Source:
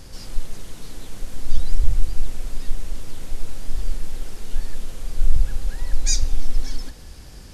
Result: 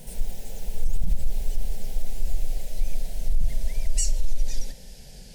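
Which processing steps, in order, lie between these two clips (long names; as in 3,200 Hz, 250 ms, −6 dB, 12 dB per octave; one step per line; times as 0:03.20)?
gliding playback speed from 186% → 96%
phaser with its sweep stopped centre 310 Hz, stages 6
brickwall limiter −12 dBFS, peak gain reduction 9.5 dB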